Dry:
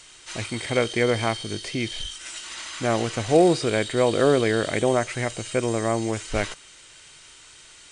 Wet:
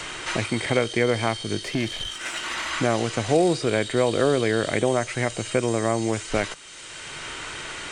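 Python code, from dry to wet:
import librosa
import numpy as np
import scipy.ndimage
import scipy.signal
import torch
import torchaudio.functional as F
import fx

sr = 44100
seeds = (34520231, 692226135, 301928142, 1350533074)

y = fx.tube_stage(x, sr, drive_db=23.0, bias=0.45, at=(1.63, 2.71))
y = fx.band_squash(y, sr, depth_pct=70)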